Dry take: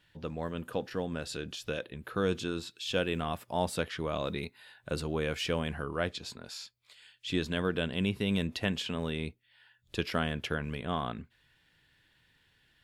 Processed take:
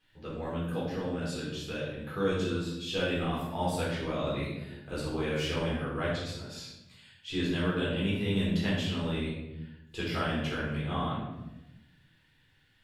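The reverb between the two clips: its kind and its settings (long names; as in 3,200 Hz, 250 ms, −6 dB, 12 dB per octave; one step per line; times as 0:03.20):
rectangular room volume 380 cubic metres, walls mixed, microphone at 3.9 metres
level −9.5 dB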